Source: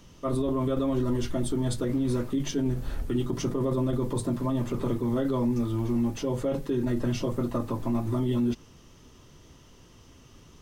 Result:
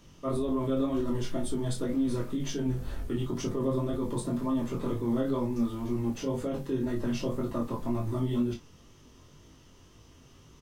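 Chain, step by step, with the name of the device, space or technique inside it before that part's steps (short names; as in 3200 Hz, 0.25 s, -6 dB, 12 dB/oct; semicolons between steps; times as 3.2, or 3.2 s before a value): double-tracked vocal (doubler 34 ms -9.5 dB; chorus 2 Hz, delay 19 ms, depth 3.9 ms)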